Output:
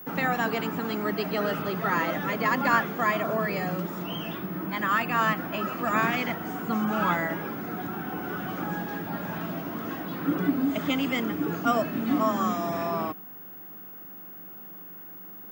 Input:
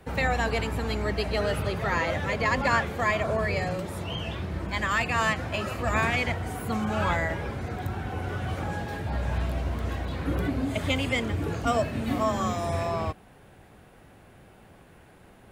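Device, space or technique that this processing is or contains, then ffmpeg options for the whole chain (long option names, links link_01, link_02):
old television with a line whistle: -filter_complex "[0:a]asettb=1/sr,asplit=3[link_01][link_02][link_03];[link_01]atrim=end=4.384[link_04];[link_02]atrim=start=4.38:end=5.77,asetpts=PTS-STARTPTS,afade=type=in:duration=0.004:curve=qsin,afade=type=out:start_time=1.386:duration=0.004:curve=qsin,highshelf=frequency=5200:gain=-7[link_05];[link_03]atrim=start=5.766[link_06];[link_04][link_05]acrossfade=duration=0.004:curve1=hsin:curve2=qsin[link_07];[link_07][link_06]acrossfade=duration=0.004:curve1=qsin:curve2=hsin,highpass=frequency=170:width=0.5412,highpass=frequency=170:width=1.3066,equalizer=frequency=180:width_type=q:width=4:gain=7,equalizer=frequency=300:width_type=q:width=4:gain=7,equalizer=frequency=530:width_type=q:width=4:gain=-5,equalizer=frequency=1300:width_type=q:width=4:gain=6,equalizer=frequency=2300:width_type=q:width=4:gain=-4,equalizer=frequency=4100:width_type=q:width=4:gain=-6,lowpass=frequency=6800:width=0.5412,lowpass=frequency=6800:width=1.3066,aeval=exprs='val(0)+0.00891*sin(2*PI*15625*n/s)':channel_layout=same"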